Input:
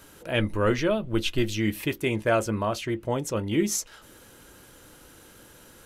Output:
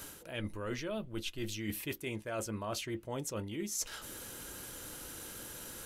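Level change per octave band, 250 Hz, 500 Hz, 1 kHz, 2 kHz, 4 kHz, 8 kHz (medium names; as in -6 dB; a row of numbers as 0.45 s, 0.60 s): -13.0 dB, -14.0 dB, -13.0 dB, -12.0 dB, -9.0 dB, -5.5 dB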